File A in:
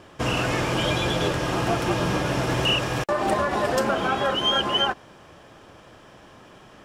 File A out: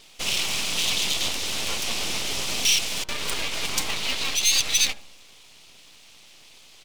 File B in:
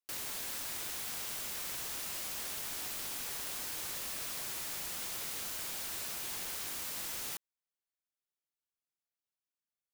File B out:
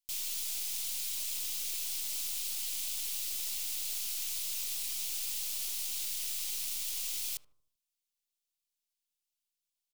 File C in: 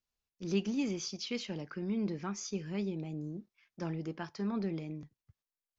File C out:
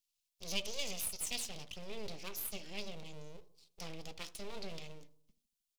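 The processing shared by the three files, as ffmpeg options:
-filter_complex "[0:a]aeval=exprs='abs(val(0))':c=same,highshelf=f=4.7k:g=-6.5,bandreject=f=118.2:t=h:w=4,bandreject=f=236.4:t=h:w=4,bandreject=f=354.6:t=h:w=4,bandreject=f=472.8:t=h:w=4,bandreject=f=591:t=h:w=4,bandreject=f=709.2:t=h:w=4,bandreject=f=827.4:t=h:w=4,bandreject=f=945.6:t=h:w=4,bandreject=f=1.0638k:t=h:w=4,bandreject=f=1.182k:t=h:w=4,bandreject=f=1.3002k:t=h:w=4,bandreject=f=1.4184k:t=h:w=4,bandreject=f=1.5366k:t=h:w=4,bandreject=f=1.6548k:t=h:w=4,aexciter=amount=7:drive=6.2:freq=2.4k,asplit=2[a][b];[b]adelay=77,lowpass=f=910:p=1,volume=-15dB,asplit=2[c][d];[d]adelay=77,lowpass=f=910:p=1,volume=0.54,asplit=2[e][f];[f]adelay=77,lowpass=f=910:p=1,volume=0.54,asplit=2[g][h];[h]adelay=77,lowpass=f=910:p=1,volume=0.54,asplit=2[i][j];[j]adelay=77,lowpass=f=910:p=1,volume=0.54[k];[c][e][g][i][k]amix=inputs=5:normalize=0[l];[a][l]amix=inputs=2:normalize=0,volume=-7.5dB"

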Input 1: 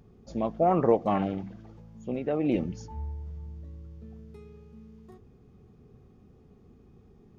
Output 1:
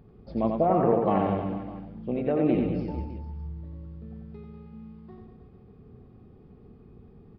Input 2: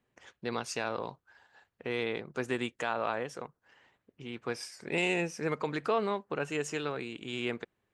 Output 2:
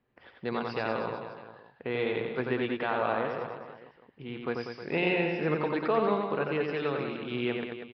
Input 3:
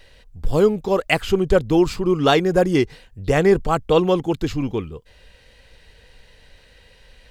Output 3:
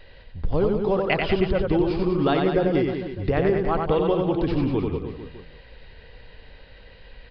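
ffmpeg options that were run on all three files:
-af "highshelf=f=3.5k:g=-10.5,acompressor=threshold=-22dB:ratio=6,aecho=1:1:90|193.5|312.5|449.4|606.8:0.631|0.398|0.251|0.158|0.1,aresample=11025,aresample=44100,volume=2.5dB"

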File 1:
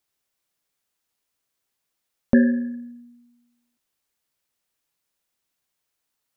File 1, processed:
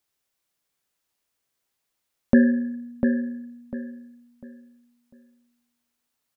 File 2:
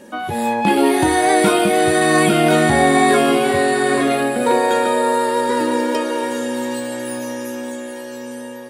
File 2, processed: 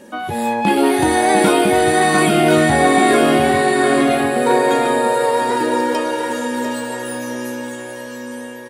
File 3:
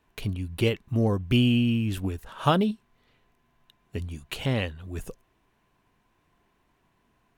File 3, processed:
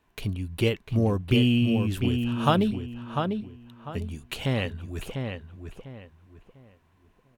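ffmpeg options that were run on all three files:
-filter_complex "[0:a]asplit=2[a][b];[b]adelay=698,lowpass=f=2.8k:p=1,volume=-5.5dB,asplit=2[c][d];[d]adelay=698,lowpass=f=2.8k:p=1,volume=0.29,asplit=2[e][f];[f]adelay=698,lowpass=f=2.8k:p=1,volume=0.29,asplit=2[g][h];[h]adelay=698,lowpass=f=2.8k:p=1,volume=0.29[i];[a][c][e][g][i]amix=inputs=5:normalize=0"

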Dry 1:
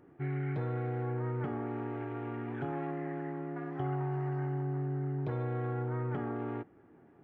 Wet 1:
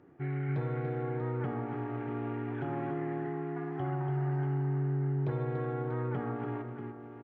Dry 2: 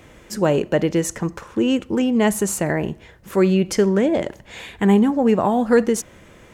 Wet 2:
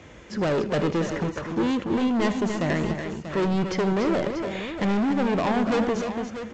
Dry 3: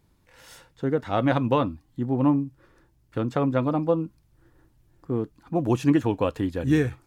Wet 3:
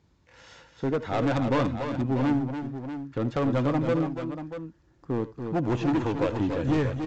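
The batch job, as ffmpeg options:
-filter_complex "[0:a]highpass=f=41:w=0.5412,highpass=f=41:w=1.3066,acrossover=split=4300[a][b];[b]acompressor=threshold=-56dB:ratio=4:attack=1:release=60[c];[a][c]amix=inputs=2:normalize=0,aresample=16000,asoftclip=type=hard:threshold=-21.5dB,aresample=44100,aecho=1:1:77|79|279|288|638:0.112|0.106|0.141|0.422|0.299"

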